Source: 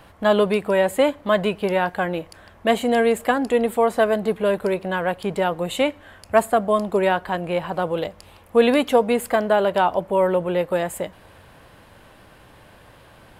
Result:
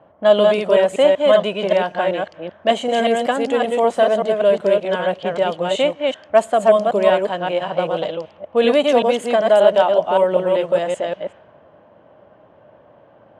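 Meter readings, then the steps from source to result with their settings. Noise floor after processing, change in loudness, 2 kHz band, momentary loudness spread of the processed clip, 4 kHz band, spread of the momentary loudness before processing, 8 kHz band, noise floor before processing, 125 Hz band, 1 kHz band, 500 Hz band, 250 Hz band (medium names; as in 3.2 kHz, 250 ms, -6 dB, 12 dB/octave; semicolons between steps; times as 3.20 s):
-50 dBFS, +4.0 dB, 0.0 dB, 9 LU, +5.5 dB, 7 LU, no reading, -50 dBFS, -2.0 dB, +2.5 dB, +5.0 dB, -1.0 dB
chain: chunks repeated in reverse 192 ms, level -2.5 dB; level-controlled noise filter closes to 920 Hz, open at -15.5 dBFS; cabinet simulation 150–9100 Hz, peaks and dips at 610 Hz +10 dB, 3.1 kHz +8 dB, 6.1 kHz +9 dB; trim -2.5 dB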